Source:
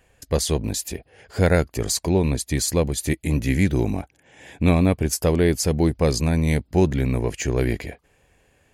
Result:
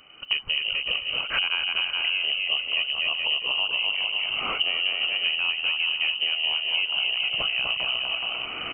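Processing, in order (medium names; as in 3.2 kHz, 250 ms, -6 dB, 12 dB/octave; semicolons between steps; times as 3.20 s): recorder AGC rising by 23 dB/s; frequency inversion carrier 3 kHz; bouncing-ball echo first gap 250 ms, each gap 0.7×, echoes 5; compression 5:1, threshold -30 dBFS, peak gain reduction 17.5 dB; trim +5.5 dB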